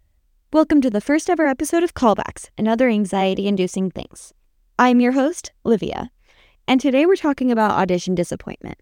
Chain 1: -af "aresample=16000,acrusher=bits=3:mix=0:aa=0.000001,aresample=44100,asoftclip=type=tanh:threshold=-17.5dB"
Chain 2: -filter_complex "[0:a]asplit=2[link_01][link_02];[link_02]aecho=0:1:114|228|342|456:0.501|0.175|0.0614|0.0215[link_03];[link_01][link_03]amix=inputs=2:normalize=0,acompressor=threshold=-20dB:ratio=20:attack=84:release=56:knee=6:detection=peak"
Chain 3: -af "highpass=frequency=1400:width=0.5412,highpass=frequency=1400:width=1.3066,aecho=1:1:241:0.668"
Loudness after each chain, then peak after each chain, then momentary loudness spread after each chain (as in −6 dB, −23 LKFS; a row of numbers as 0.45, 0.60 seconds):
−23.5, −20.5, −29.0 LKFS; −17.5, −2.5, −9.0 dBFS; 11, 10, 13 LU